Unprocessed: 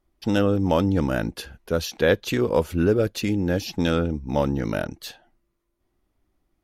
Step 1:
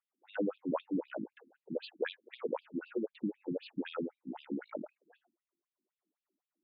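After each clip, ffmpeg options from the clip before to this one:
-af "aemphasis=mode=reproduction:type=75fm,afftfilt=real='re*between(b*sr/1024,240*pow(3600/240,0.5+0.5*sin(2*PI*3.9*pts/sr))/1.41,240*pow(3600/240,0.5+0.5*sin(2*PI*3.9*pts/sr))*1.41)':imag='im*between(b*sr/1024,240*pow(3600/240,0.5+0.5*sin(2*PI*3.9*pts/sr))/1.41,240*pow(3600/240,0.5+0.5*sin(2*PI*3.9*pts/sr))*1.41)':win_size=1024:overlap=0.75,volume=-8dB"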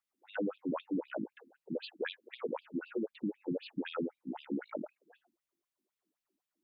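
-af "alimiter=level_in=4.5dB:limit=-24dB:level=0:latency=1:release=36,volume=-4.5dB,volume=2dB"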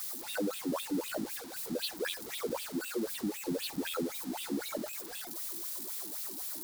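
-af "aeval=exprs='val(0)+0.5*0.00794*sgn(val(0))':c=same,aexciter=amount=2.2:drive=7.8:freq=3.8k"

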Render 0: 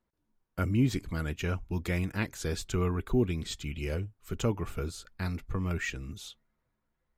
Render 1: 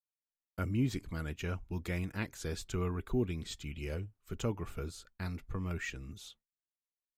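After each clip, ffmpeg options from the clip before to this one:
-af "agate=range=-33dB:threshold=-47dB:ratio=3:detection=peak,volume=-5.5dB"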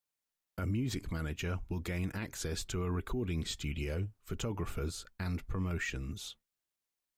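-af "alimiter=level_in=9.5dB:limit=-24dB:level=0:latency=1:release=59,volume=-9.5dB,volume=6dB"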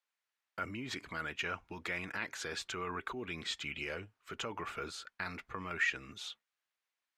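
-af "bandpass=f=1.7k:t=q:w=0.86:csg=0,volume=7dB"

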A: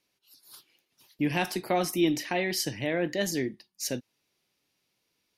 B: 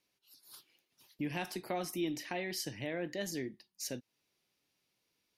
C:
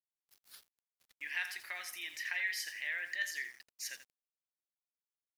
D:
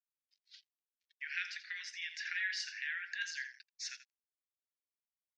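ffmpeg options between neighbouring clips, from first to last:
-af "acompressor=threshold=-40dB:ratio=1.5,volume=-4dB"
-af "highpass=f=1.8k:t=q:w=4.4,aecho=1:1:84|168|252:0.266|0.0798|0.0239,aeval=exprs='val(0)*gte(abs(val(0)),0.00211)':c=same,volume=-2dB"
-af "afreqshift=-190,asuperpass=centerf=3400:order=8:qfactor=0.72,afftdn=nr=15:nf=-67,volume=1.5dB"

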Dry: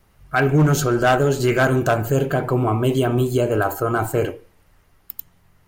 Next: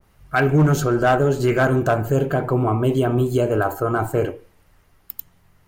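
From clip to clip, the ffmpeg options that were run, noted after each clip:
-af "adynamicequalizer=threshold=0.0178:dfrequency=1900:dqfactor=0.7:tfrequency=1900:tqfactor=0.7:attack=5:release=100:ratio=0.375:range=4:mode=cutabove:tftype=highshelf"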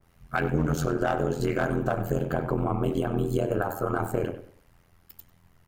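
-filter_complex "[0:a]acompressor=threshold=-19dB:ratio=6,tremolo=f=85:d=0.947,asplit=2[a][b];[b]adelay=97,lowpass=f=3.3k:p=1,volume=-12dB,asplit=2[c][d];[d]adelay=97,lowpass=f=3.3k:p=1,volume=0.31,asplit=2[e][f];[f]adelay=97,lowpass=f=3.3k:p=1,volume=0.31[g];[a][c][e][g]amix=inputs=4:normalize=0"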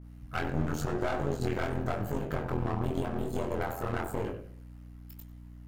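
-af "aeval=exprs='clip(val(0),-1,0.0211)':c=same,flanger=delay=19:depth=6.5:speed=0.92,aeval=exprs='val(0)+0.00501*(sin(2*PI*60*n/s)+sin(2*PI*2*60*n/s)/2+sin(2*PI*3*60*n/s)/3+sin(2*PI*4*60*n/s)/4+sin(2*PI*5*60*n/s)/5)':c=same"

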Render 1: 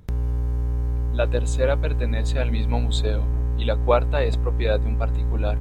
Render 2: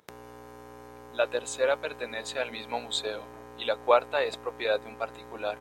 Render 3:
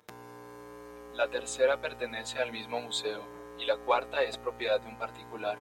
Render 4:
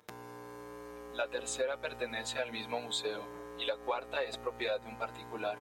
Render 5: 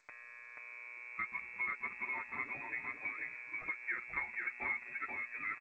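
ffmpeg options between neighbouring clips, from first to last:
-af "highpass=550"
-filter_complex "[0:a]asplit=2[a][b];[b]asoftclip=type=tanh:threshold=-25dB,volume=-11dB[c];[a][c]amix=inputs=2:normalize=0,asplit=2[d][e];[e]adelay=6.2,afreqshift=-0.38[f];[d][f]amix=inputs=2:normalize=1"
-af "acompressor=threshold=-31dB:ratio=6"
-filter_complex "[0:a]asplit=2[a][b];[b]aecho=0:1:484:0.708[c];[a][c]amix=inputs=2:normalize=0,lowpass=f=2.3k:t=q:w=0.5098,lowpass=f=2.3k:t=q:w=0.6013,lowpass=f=2.3k:t=q:w=0.9,lowpass=f=2.3k:t=q:w=2.563,afreqshift=-2700,volume=-5dB" -ar 16000 -c:a g722

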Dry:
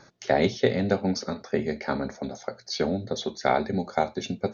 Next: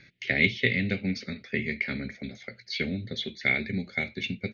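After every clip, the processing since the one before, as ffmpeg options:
-af "firequalizer=gain_entry='entry(130,0);entry(940,-26);entry(2100,13);entry(5800,-12)':delay=0.05:min_phase=1"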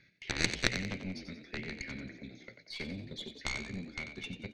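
-filter_complex "[0:a]aeval=exprs='0.501*(cos(1*acos(clip(val(0)/0.501,-1,1)))-cos(1*PI/2))+0.224*(cos(3*acos(clip(val(0)/0.501,-1,1)))-cos(3*PI/2))+0.0316*(cos(4*acos(clip(val(0)/0.501,-1,1)))-cos(4*PI/2))+0.0282*(cos(5*acos(clip(val(0)/0.501,-1,1)))-cos(5*PI/2))+0.0141*(cos(7*acos(clip(val(0)/0.501,-1,1)))-cos(7*PI/2))':c=same,asplit=6[a][b][c][d][e][f];[b]adelay=91,afreqshift=52,volume=-9dB[g];[c]adelay=182,afreqshift=104,volume=-16.5dB[h];[d]adelay=273,afreqshift=156,volume=-24.1dB[i];[e]adelay=364,afreqshift=208,volume=-31.6dB[j];[f]adelay=455,afreqshift=260,volume=-39.1dB[k];[a][g][h][i][j][k]amix=inputs=6:normalize=0,volume=2dB"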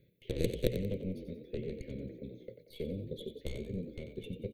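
-af "firequalizer=gain_entry='entry(130,0);entry(260,-5);entry(490,9);entry(760,-22);entry(1300,-30);entry(3300,-10);entry(5100,-28);entry(12000,8)':delay=0.05:min_phase=1,volume=4dB"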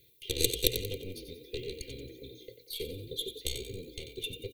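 -af "aecho=1:1:2.5:0.77,aexciter=amount=6.6:drive=6.9:freq=2.5k,volume=-3.5dB"

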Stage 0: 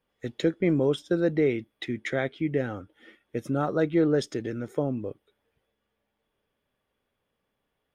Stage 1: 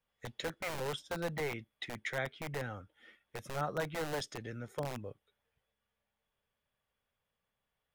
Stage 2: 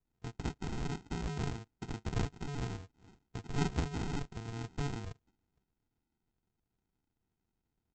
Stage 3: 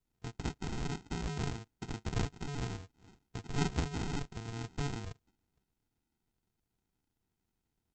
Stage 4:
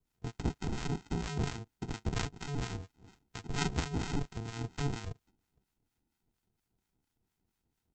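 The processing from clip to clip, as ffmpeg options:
-filter_complex "[0:a]equalizer=f=320:w=1.2:g=-11.5,acrossover=split=380[a][b];[a]aeval=exprs='(mod(33.5*val(0)+1,2)-1)/33.5':c=same[c];[c][b]amix=inputs=2:normalize=0,volume=-5dB"
-af "aecho=1:1:1.3:0.5,aresample=16000,acrusher=samples=28:mix=1:aa=0.000001,aresample=44100,volume=1.5dB"
-af "aemphasis=mode=reproduction:type=50kf,crystalizer=i=3:c=0"
-filter_complex "[0:a]acrossover=split=860[a][b];[a]aeval=exprs='val(0)*(1-0.7/2+0.7/2*cos(2*PI*4.3*n/s))':c=same[c];[b]aeval=exprs='val(0)*(1-0.7/2-0.7/2*cos(2*PI*4.3*n/s))':c=same[d];[c][d]amix=inputs=2:normalize=0,volume=5dB"

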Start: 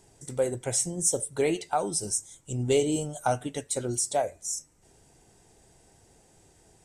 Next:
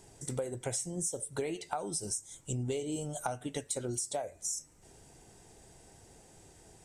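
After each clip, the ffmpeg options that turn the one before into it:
-af "acompressor=threshold=-34dB:ratio=12,volume=2dB"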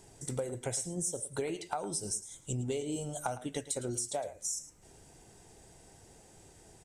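-af "aecho=1:1:109:0.178"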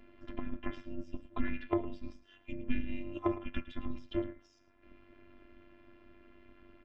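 -af "highpass=f=180:t=q:w=0.5412,highpass=f=180:t=q:w=1.307,lowpass=f=3.2k:t=q:w=0.5176,lowpass=f=3.2k:t=q:w=0.7071,lowpass=f=3.2k:t=q:w=1.932,afreqshift=-400,afftfilt=real='hypot(re,im)*cos(PI*b)':imag='0':win_size=512:overlap=0.75,tremolo=f=250:d=0.667,volume=10dB"

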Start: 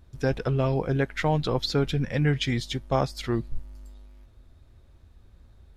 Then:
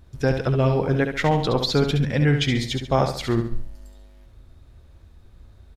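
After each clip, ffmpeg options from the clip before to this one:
-af "aecho=1:1:69|138|207|276:0.447|0.17|0.0645|0.0245,volume=4dB"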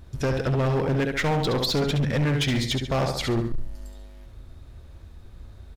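-filter_complex "[0:a]asplit=2[a][b];[b]acompressor=threshold=-28dB:ratio=6,volume=0.5dB[c];[a][c]amix=inputs=2:normalize=0,asoftclip=type=hard:threshold=-18dB,volume=-2dB"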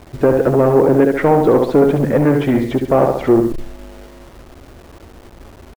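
-filter_complex "[0:a]firequalizer=gain_entry='entry(100,0);entry(310,15);entry(4300,-19);entry(11000,-25)':delay=0.05:min_phase=1,acrossover=split=630[a][b];[a]acrusher=bits=6:mix=0:aa=0.000001[c];[c][b]amix=inputs=2:normalize=0,volume=1dB"

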